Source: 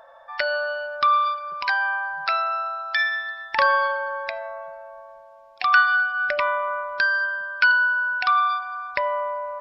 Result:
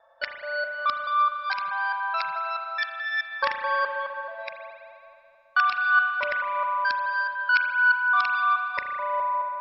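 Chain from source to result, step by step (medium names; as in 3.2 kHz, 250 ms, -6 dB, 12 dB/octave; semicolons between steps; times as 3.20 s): time reversed locally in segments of 214 ms; spectral noise reduction 7 dB; spring tank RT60 2.5 s, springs 35 ms, chirp 50 ms, DRR 4.5 dB; trim -4.5 dB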